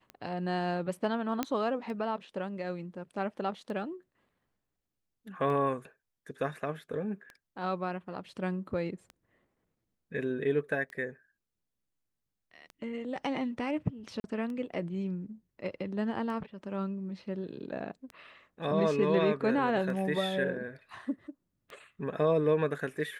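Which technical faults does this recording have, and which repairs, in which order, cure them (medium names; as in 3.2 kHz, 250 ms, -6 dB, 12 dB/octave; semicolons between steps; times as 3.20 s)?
tick 33 1/3 rpm -30 dBFS
1.43 s: pop -15 dBFS
14.20–14.24 s: dropout 41 ms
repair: de-click; interpolate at 14.20 s, 41 ms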